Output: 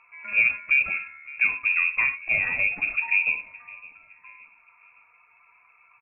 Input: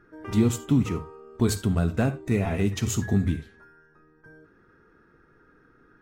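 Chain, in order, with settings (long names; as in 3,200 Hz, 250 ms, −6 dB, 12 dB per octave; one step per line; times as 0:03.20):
spectral magnitudes quantised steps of 15 dB
voice inversion scrambler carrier 2,600 Hz
on a send: repeating echo 565 ms, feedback 45%, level −21 dB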